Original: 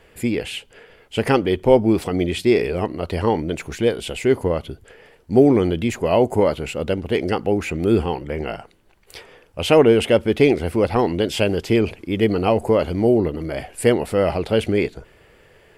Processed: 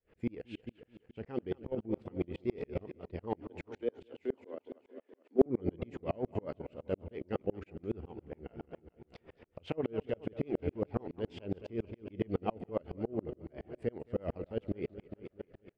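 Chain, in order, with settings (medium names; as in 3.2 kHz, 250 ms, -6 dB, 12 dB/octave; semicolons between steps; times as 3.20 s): 3.40–5.46 s: elliptic high-pass 250 Hz; on a send: feedback delay 215 ms, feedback 59%, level -11 dB; on the sum: Chebyshev shaper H 7 -35 dB, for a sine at -0.5 dBFS; in parallel at -3 dB: compression 10:1, threshold -30 dBFS, peak gain reduction 22.5 dB; on the sum: tape spacing loss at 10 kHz 30 dB; level held to a coarse grid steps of 11 dB; rotary cabinet horn 7.5 Hz; sawtooth tremolo in dB swelling 7.2 Hz, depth 35 dB; trim -3 dB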